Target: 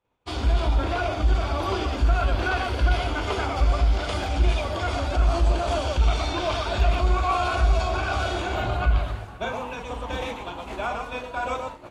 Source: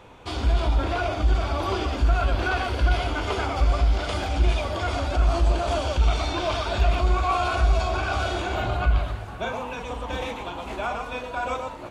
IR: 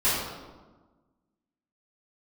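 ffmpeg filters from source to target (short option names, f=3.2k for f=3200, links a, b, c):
-af "agate=range=-33dB:threshold=-31dB:ratio=3:detection=peak"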